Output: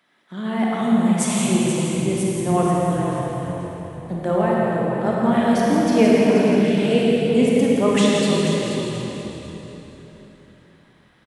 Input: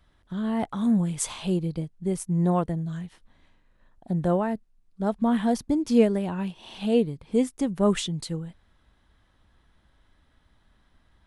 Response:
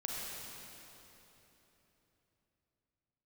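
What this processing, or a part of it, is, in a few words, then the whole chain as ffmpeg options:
PA in a hall: -filter_complex "[0:a]highpass=f=200:w=0.5412,highpass=f=200:w=1.3066,equalizer=f=2200:t=o:w=0.77:g=7,aecho=1:1:168:0.398[s0];[1:a]atrim=start_sample=2205[s1];[s0][s1]afir=irnorm=-1:irlink=0,asettb=1/sr,asplit=3[s2][s3][s4];[s2]atrim=end=6.654[s5];[s3]atrim=start=6.65:end=7.29,asetpts=PTS-STARTPTS,afade=t=in:d=0.004:c=qsin,afade=t=out:st=0.636:d=0.004:c=qsin,equalizer=f=1000:t=o:w=0.33:g=-12,equalizer=f=2000:t=o:w=0.33:g=4,equalizer=f=8000:t=o:w=0.33:g=6[s6];[s4]atrim=start=7.286[s7];[s5][s6]acrossfade=d=0.004:c1=hsin:c2=qsin[s8];[s8][s7]acrossfade=d=0.004:c1=qsin:c2=hsin,asplit=5[s9][s10][s11][s12][s13];[s10]adelay=482,afreqshift=-41,volume=0.376[s14];[s11]adelay=964,afreqshift=-82,volume=0.112[s15];[s12]adelay=1446,afreqshift=-123,volume=0.0339[s16];[s13]adelay=1928,afreqshift=-164,volume=0.0101[s17];[s9][s14][s15][s16][s17]amix=inputs=5:normalize=0,volume=1.78"

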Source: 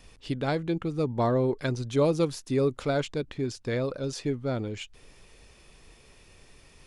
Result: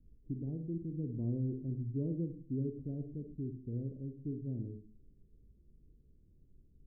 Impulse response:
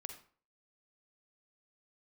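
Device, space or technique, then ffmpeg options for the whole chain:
next room: -filter_complex "[0:a]lowpass=f=300:w=0.5412,lowpass=f=300:w=1.3066[s0];[1:a]atrim=start_sample=2205[s1];[s0][s1]afir=irnorm=-1:irlink=0,volume=0.75"

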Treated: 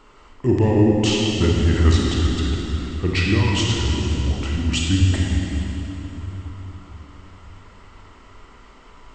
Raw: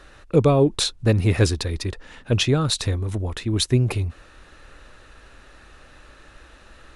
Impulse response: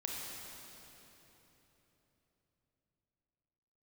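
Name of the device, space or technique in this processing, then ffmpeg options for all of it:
slowed and reverbed: -filter_complex "[0:a]asetrate=33516,aresample=44100[s0];[1:a]atrim=start_sample=2205[s1];[s0][s1]afir=irnorm=-1:irlink=0"

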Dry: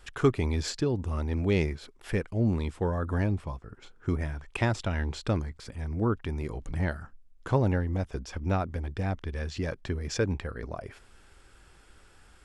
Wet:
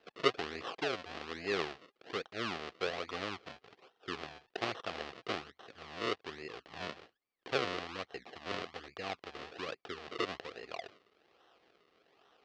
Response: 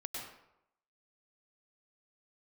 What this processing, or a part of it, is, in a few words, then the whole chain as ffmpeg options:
circuit-bent sampling toy: -af "acrusher=samples=37:mix=1:aa=0.000001:lfo=1:lforange=37:lforate=1.2,highpass=510,equalizer=f=590:t=q:w=4:g=-7,equalizer=f=930:t=q:w=4:g=-10,equalizer=f=1500:t=q:w=4:g=-6,equalizer=f=2200:t=q:w=4:g=-4,equalizer=f=3600:t=q:w=4:g=-3,lowpass=f=4300:w=0.5412,lowpass=f=4300:w=1.3066,equalizer=f=250:w=1.2:g=-5.5,volume=1.26"

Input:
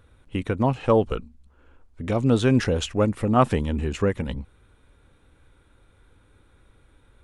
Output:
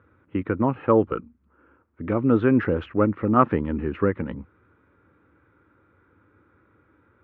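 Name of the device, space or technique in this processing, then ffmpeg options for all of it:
bass cabinet: -af "highpass=f=89:w=0.5412,highpass=f=89:w=1.3066,equalizer=f=130:t=q:w=4:g=-5,equalizer=f=320:t=q:w=4:g=6,equalizer=f=720:t=q:w=4:g=-6,equalizer=f=1300:t=q:w=4:g=6,lowpass=f=2100:w=0.5412,lowpass=f=2100:w=1.3066"

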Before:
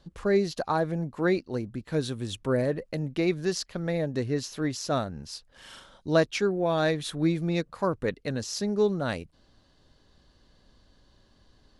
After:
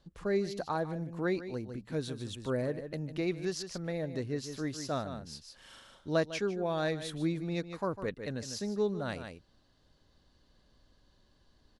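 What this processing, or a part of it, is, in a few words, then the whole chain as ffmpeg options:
ducked delay: -filter_complex "[0:a]asplit=3[s0][s1][s2];[s1]adelay=151,volume=0.562[s3];[s2]apad=whole_len=526769[s4];[s3][s4]sidechaincompress=threshold=0.0224:ratio=12:attack=16:release=247[s5];[s0][s5]amix=inputs=2:normalize=0,volume=0.447"

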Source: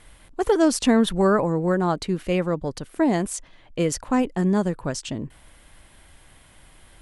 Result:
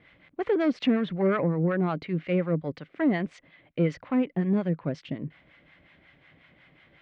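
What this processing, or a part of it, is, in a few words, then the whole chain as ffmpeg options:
guitar amplifier with harmonic tremolo: -filter_complex "[0:a]acrossover=split=700[s0][s1];[s0]aeval=exprs='val(0)*(1-0.7/2+0.7/2*cos(2*PI*5.5*n/s))':c=same[s2];[s1]aeval=exprs='val(0)*(1-0.7/2-0.7/2*cos(2*PI*5.5*n/s))':c=same[s3];[s2][s3]amix=inputs=2:normalize=0,asoftclip=type=tanh:threshold=0.168,highpass=110,equalizer=f=160:t=q:w=4:g=8,equalizer=f=290:t=q:w=4:g=4,equalizer=f=550:t=q:w=4:g=3,equalizer=f=920:t=q:w=4:g=-5,equalizer=f=2100:t=q:w=4:g=9,lowpass=f=3500:w=0.5412,lowpass=f=3500:w=1.3066,volume=0.794"

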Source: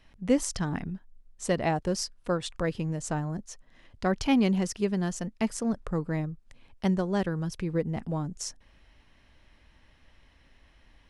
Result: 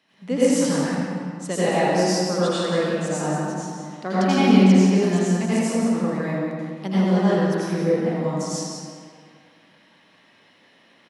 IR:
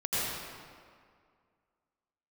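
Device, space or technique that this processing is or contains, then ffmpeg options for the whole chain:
PA in a hall: -filter_complex "[0:a]highpass=f=180:w=0.5412,highpass=f=180:w=1.3066,equalizer=f=3900:t=o:w=0.52:g=3,aecho=1:1:180:0.355[s0];[1:a]atrim=start_sample=2205[s1];[s0][s1]afir=irnorm=-1:irlink=0,asettb=1/sr,asplit=3[s2][s3][s4];[s2]atrim=end=4.634[s5];[s3]atrim=start=4.63:end=5.03,asetpts=PTS-STARTPTS,afade=t=in:d=0.004:c=qsin,afade=t=out:st=0.396:d=0.004:c=qsin,lowpass=8000[s6];[s4]atrim=start=5.026[s7];[s5][s6]acrossfade=d=0.004:c1=hsin:c2=qsin[s8];[s8][s7]acrossfade=d=0.004:c1=qsin:c2=hsin,volume=0.891"

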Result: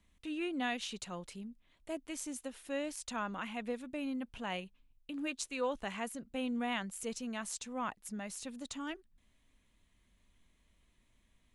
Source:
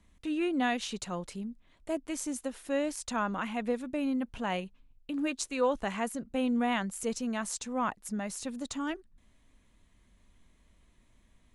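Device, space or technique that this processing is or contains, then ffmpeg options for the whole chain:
presence and air boost: -af "equalizer=f=2900:t=o:w=1.3:g=5,highshelf=f=10000:g=6,volume=0.422"

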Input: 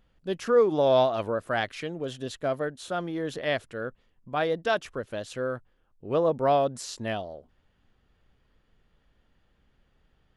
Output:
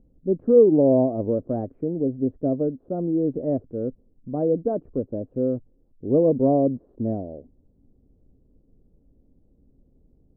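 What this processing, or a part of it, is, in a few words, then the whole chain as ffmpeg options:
under water: -af "lowpass=f=510:w=0.5412,lowpass=f=510:w=1.3066,equalizer=f=270:t=o:w=0.38:g=8,volume=2.37"

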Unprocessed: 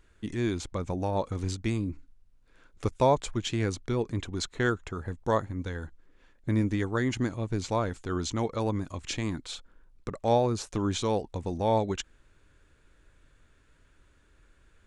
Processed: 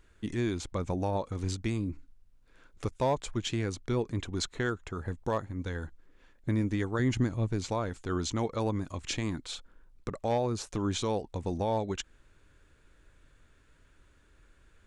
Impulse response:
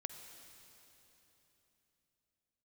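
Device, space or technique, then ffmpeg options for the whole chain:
clipper into limiter: -filter_complex "[0:a]asoftclip=type=hard:threshold=0.168,alimiter=limit=0.0944:level=0:latency=1:release=380,asettb=1/sr,asplit=3[s0][s1][s2];[s0]atrim=end=6.994[s3];[s1]atrim=start=6.99:end=7.5,asetpts=PTS-STARTPTS,afade=t=in:d=0.004:c=qsin,afade=t=out:st=0.506:d=0.004:c=qsin,lowshelf=f=180:g=8.5[s4];[s2]atrim=start=7.496[s5];[s3][s4]acrossfade=d=0.004:c1=hsin:c2=qsin[s6];[s6][s5]acrossfade=d=0.004:c1=qsin:c2=hsin"

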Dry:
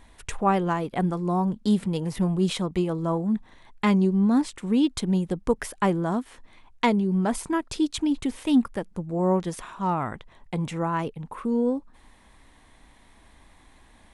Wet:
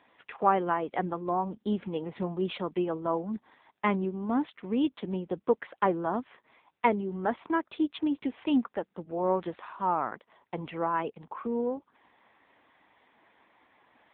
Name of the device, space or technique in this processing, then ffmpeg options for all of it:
telephone: -af "highpass=330,lowpass=3400" -ar 8000 -c:a libopencore_amrnb -b:a 6700

